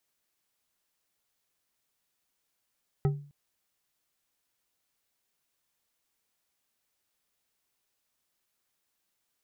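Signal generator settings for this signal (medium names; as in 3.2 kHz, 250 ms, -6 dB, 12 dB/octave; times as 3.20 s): glass hit bar, length 0.26 s, lowest mode 144 Hz, decay 0.44 s, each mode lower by 6.5 dB, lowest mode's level -20 dB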